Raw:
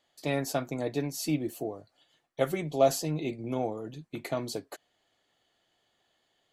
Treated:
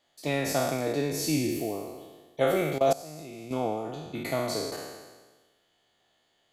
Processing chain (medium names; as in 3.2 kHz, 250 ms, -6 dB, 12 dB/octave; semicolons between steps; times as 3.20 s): spectral sustain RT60 1.35 s; 2.78–3.51 s: level held to a coarse grid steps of 21 dB